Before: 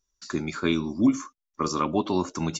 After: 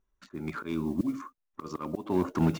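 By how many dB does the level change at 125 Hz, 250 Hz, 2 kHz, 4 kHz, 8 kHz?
−0.5 dB, −5.0 dB, −8.0 dB, −14.5 dB, can't be measured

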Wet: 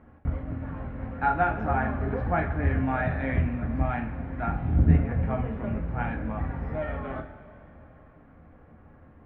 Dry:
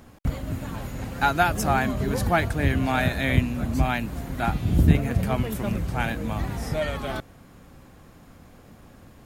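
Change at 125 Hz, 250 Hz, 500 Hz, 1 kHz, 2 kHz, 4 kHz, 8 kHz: −2.5 dB, −3.5 dB, −3.5 dB, −3.0 dB, −5.5 dB, below −20 dB, below −40 dB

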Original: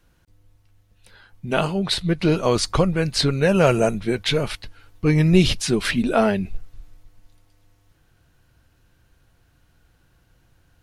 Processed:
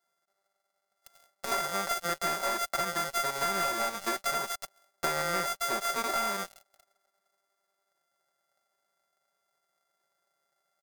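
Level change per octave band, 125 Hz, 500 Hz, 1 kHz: −27.5, −15.0, −2.0 decibels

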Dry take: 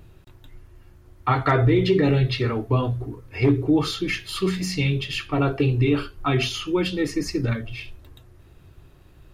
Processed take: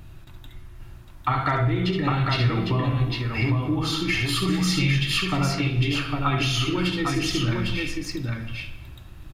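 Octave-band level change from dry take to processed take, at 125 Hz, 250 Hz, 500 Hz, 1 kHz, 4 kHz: 0.0, −2.0, −7.0, +0.5, +4.0 decibels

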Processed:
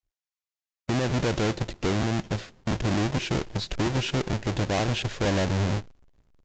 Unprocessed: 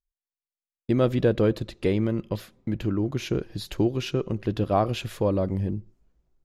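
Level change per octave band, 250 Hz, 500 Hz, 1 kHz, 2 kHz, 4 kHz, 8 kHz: −2.0, −4.0, +0.5, +7.0, +5.5, +8.5 decibels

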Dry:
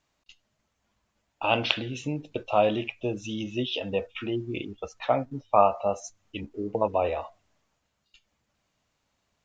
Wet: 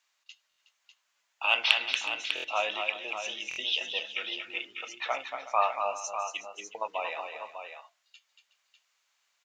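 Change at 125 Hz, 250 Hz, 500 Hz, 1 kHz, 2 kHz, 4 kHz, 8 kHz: below −30 dB, −22.5 dB, −10.5 dB, −4.0 dB, +5.0 dB, +4.5 dB, can't be measured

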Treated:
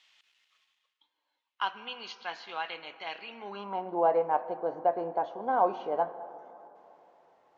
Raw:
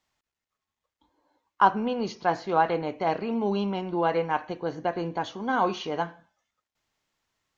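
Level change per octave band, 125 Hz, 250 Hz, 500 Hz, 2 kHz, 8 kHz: −17.0 dB, −12.5 dB, −2.5 dB, −7.0 dB, can't be measured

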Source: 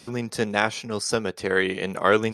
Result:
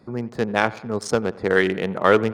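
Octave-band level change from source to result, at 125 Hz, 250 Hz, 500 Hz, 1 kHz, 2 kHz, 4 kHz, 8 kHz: +3.5, +3.5, +3.5, +2.5, +1.5, −2.5, −5.0 decibels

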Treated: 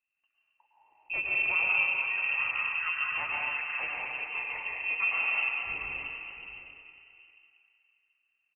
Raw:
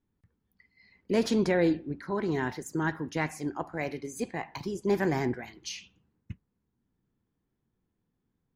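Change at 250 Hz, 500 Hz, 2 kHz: below −25 dB, −20.0 dB, +10.5 dB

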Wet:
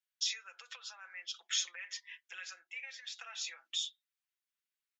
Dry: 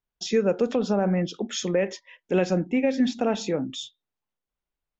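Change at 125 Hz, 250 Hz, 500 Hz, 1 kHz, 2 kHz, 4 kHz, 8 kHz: below −40 dB, below −40 dB, below −40 dB, −22.5 dB, −8.0 dB, −1.5 dB, can't be measured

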